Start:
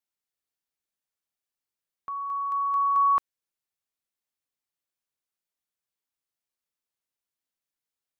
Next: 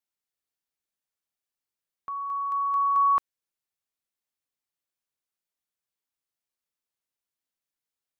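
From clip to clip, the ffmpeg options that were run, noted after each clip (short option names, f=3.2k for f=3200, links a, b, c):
-af anull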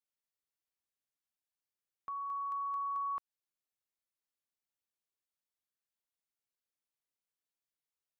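-af "acompressor=threshold=-29dB:ratio=6,volume=-6.5dB"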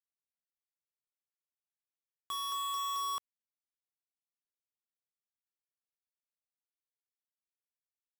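-af "acrusher=bits=5:mix=0:aa=0.000001,volume=-2dB"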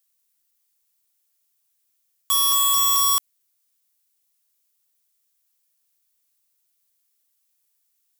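-af "crystalizer=i=4.5:c=0,volume=8.5dB"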